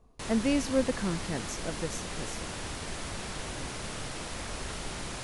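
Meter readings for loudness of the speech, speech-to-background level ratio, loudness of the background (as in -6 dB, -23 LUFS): -32.0 LUFS, 5.5 dB, -37.5 LUFS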